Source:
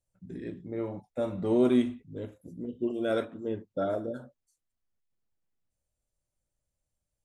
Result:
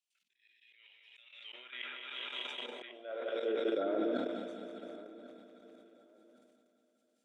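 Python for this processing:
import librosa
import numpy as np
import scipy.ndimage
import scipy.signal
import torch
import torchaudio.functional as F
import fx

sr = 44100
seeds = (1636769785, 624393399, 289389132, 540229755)

y = fx.reverse_delay_fb(x, sr, ms=100, feedback_pct=84, wet_db=-9)
y = fx.weighting(y, sr, curve='D')
y = fx.env_lowpass_down(y, sr, base_hz=1700.0, full_db=-24.0)
y = fx.peak_eq(y, sr, hz=3000.0, db=12.5, octaves=0.54, at=(0.61, 2.66))
y = fx.level_steps(y, sr, step_db=12)
y = fx.auto_swell(y, sr, attack_ms=783.0)
y = fx.filter_sweep_highpass(y, sr, from_hz=2600.0, to_hz=220.0, start_s=1.23, end_s=4.44, q=2.5)
y = fx.echo_feedback(y, sr, ms=1096, feedback_pct=27, wet_db=-19.5)
y = fx.sustainer(y, sr, db_per_s=31.0)
y = y * librosa.db_to_amplitude(-1.0)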